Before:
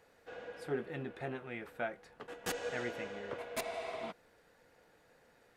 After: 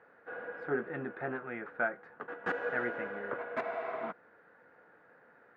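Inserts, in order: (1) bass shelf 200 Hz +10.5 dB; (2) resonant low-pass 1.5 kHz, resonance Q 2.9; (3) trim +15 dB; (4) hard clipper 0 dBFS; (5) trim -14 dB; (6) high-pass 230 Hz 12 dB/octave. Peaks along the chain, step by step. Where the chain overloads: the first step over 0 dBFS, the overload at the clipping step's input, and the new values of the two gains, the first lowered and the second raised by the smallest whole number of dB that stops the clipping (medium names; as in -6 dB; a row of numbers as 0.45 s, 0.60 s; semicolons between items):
-22.0 dBFS, -20.0 dBFS, -5.0 dBFS, -5.0 dBFS, -19.0 dBFS, -19.5 dBFS; nothing clips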